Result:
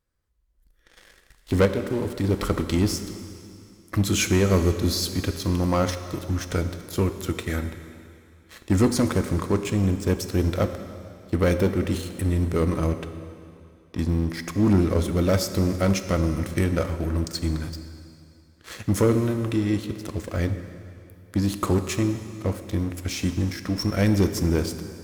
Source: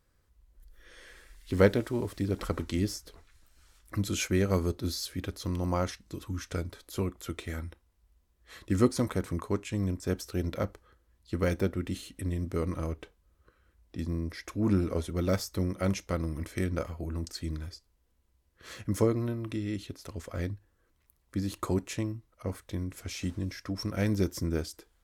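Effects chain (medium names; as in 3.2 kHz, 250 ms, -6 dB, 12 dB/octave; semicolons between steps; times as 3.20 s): 1.65–2.24 s: compression, threshold -31 dBFS, peak gain reduction 12.5 dB; waveshaping leveller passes 3; plate-style reverb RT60 2.6 s, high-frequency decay 0.95×, DRR 8.5 dB; trim -2.5 dB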